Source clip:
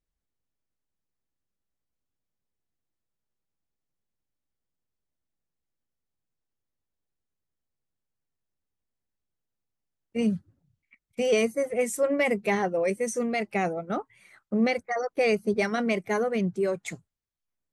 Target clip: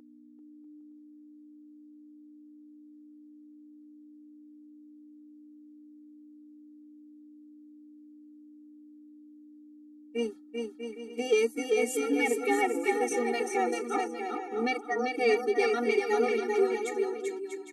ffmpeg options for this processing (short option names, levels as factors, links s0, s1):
-filter_complex "[0:a]aeval=exprs='val(0)+0.01*(sin(2*PI*60*n/s)+sin(2*PI*2*60*n/s)/2+sin(2*PI*3*60*n/s)/3+sin(2*PI*4*60*n/s)/4+sin(2*PI*5*60*n/s)/5)':c=same,acontrast=83,asplit=2[s0][s1];[s1]aecho=0:1:390|643.5|808.3|915.4|985:0.631|0.398|0.251|0.158|0.1[s2];[s0][s2]amix=inputs=2:normalize=0,afftfilt=real='re*eq(mod(floor(b*sr/1024/240),2),1)':imag='im*eq(mod(floor(b*sr/1024/240),2),1)':win_size=1024:overlap=0.75,volume=0.473"